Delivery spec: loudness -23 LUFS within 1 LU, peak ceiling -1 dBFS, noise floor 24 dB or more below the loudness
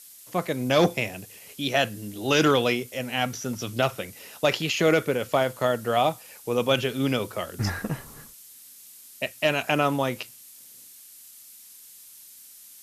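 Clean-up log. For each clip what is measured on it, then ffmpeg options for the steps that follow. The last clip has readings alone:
noise floor -49 dBFS; noise floor target -50 dBFS; loudness -25.5 LUFS; peak -8.0 dBFS; loudness target -23.0 LUFS
-> -af "afftdn=nr=6:nf=-49"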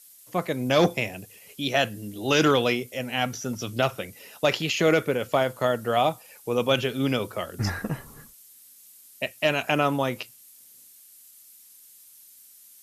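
noise floor -52 dBFS; loudness -25.5 LUFS; peak -8.0 dBFS; loudness target -23.0 LUFS
-> -af "volume=2.5dB"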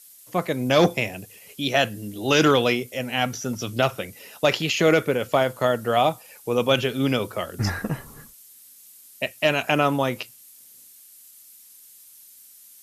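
loudness -23.0 LUFS; peak -5.5 dBFS; noise floor -50 dBFS

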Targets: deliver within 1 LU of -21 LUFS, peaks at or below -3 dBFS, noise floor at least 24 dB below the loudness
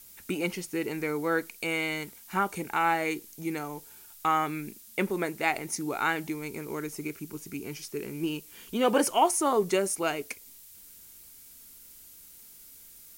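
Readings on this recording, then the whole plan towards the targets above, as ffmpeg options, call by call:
noise floor -51 dBFS; noise floor target -54 dBFS; loudness -30.0 LUFS; peak -11.0 dBFS; loudness target -21.0 LUFS
-> -af "afftdn=nr=6:nf=-51"
-af "volume=9dB,alimiter=limit=-3dB:level=0:latency=1"

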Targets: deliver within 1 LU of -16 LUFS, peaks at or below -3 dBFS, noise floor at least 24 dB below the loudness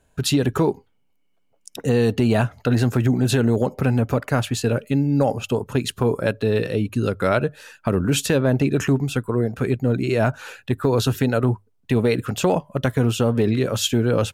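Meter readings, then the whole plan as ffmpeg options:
loudness -21.5 LUFS; peak -6.0 dBFS; loudness target -16.0 LUFS
-> -af "volume=5.5dB,alimiter=limit=-3dB:level=0:latency=1"

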